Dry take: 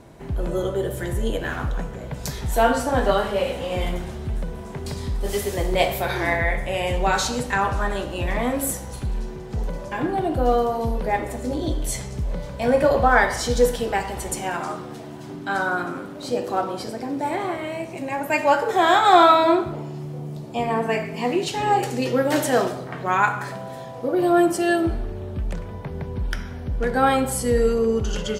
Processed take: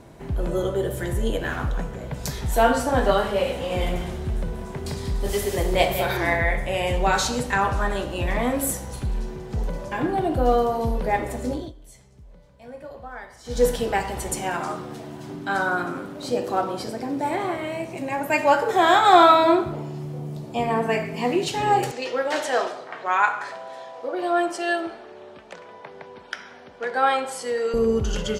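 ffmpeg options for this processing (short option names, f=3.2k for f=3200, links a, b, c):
-filter_complex "[0:a]asettb=1/sr,asplit=3[a][b][c];[a]atrim=end=3.514[d];[b]atrim=start=3.51:end=6.17,asetpts=PTS-STARTPTS,afade=t=in:d=0.004:c=qsin,afade=t=out:st=2.656:d=0.004:c=qsin,aecho=1:1:189:0.355,atrim=end_sample=117306[e];[c]atrim=start=6.166[f];[d][e]acrossfade=d=0.004:c1=hsin:c2=qsin[g];[g][f]acrossfade=d=0.004:c1=qsin:c2=hsin,asettb=1/sr,asplit=3[h][i][j];[h]atrim=end=21.914[k];[i]atrim=start=21.91:end=27.74,asetpts=PTS-STARTPTS,afade=t=in:d=0.004:c=qsin,afade=t=out:st=5.826:d=0.004:c=qsin,highpass=560,lowpass=6k[l];[j]atrim=start=27.736[m];[k][l]acrossfade=d=0.004:c1=hsin:c2=qsin[n];[n][m]acrossfade=d=0.004:c1=qsin:c2=hsin,asplit=3[o][p][q];[o]atrim=end=11.72,asetpts=PTS-STARTPTS,afade=t=out:st=11.49:d=0.23:silence=0.0841395[r];[p]atrim=start=11.72:end=13.44,asetpts=PTS-STARTPTS,volume=-21.5dB[s];[q]atrim=start=13.44,asetpts=PTS-STARTPTS,afade=t=in:d=0.23:silence=0.0841395[t];[r][s][t]concat=n=3:v=0:a=1"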